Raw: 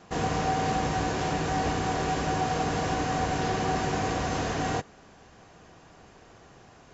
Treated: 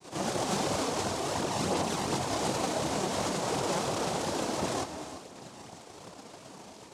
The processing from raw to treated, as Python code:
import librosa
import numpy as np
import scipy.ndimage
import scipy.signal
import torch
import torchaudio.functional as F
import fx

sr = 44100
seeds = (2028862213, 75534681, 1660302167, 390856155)

p1 = scipy.signal.sosfilt(scipy.signal.ellip(3, 1.0, 40, [170.0, 1300.0], 'bandpass', fs=sr, output='sos'), x)
p2 = fx.over_compress(p1, sr, threshold_db=-43.0, ratio=-1.0)
p3 = p1 + F.gain(torch.from_numpy(p2), 0.0).numpy()
p4 = np.sign(p3) * np.maximum(np.abs(p3) - 10.0 ** (-44.5 / 20.0), 0.0)
p5 = fx.noise_vocoder(p4, sr, seeds[0], bands=2)
p6 = fx.chorus_voices(p5, sr, voices=2, hz=1.4, base_ms=29, depth_ms=3.0, mix_pct=70)
p7 = p6 + 10.0 ** (-22.0 / 20.0) * np.pad(p6, (int(833 * sr / 1000.0), 0))[:len(p6)]
y = fx.rev_gated(p7, sr, seeds[1], gate_ms=390, shape='rising', drr_db=9.5)